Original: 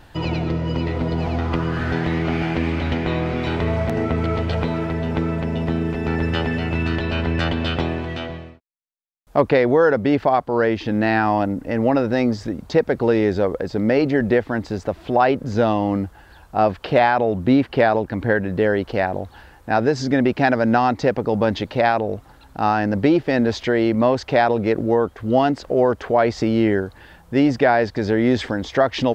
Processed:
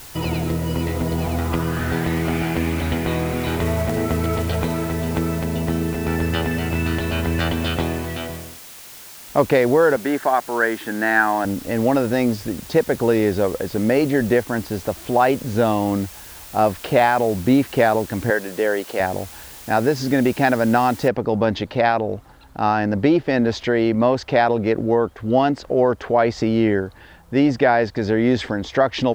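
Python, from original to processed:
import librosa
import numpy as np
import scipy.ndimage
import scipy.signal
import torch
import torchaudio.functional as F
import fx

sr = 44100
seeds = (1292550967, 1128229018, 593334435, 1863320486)

y = fx.block_float(x, sr, bits=5, at=(3.4, 5.45))
y = fx.cabinet(y, sr, low_hz=300.0, low_slope=12, high_hz=3700.0, hz=(510.0, 1600.0, 2600.0), db=(-7, 10, -7), at=(9.96, 11.45))
y = fx.notch(y, sr, hz=5000.0, q=12.0, at=(14.98, 16.04))
y = fx.highpass(y, sr, hz=350.0, slope=12, at=(18.3, 19.0))
y = fx.noise_floor_step(y, sr, seeds[0], at_s=21.08, before_db=-40, after_db=-69, tilt_db=0.0)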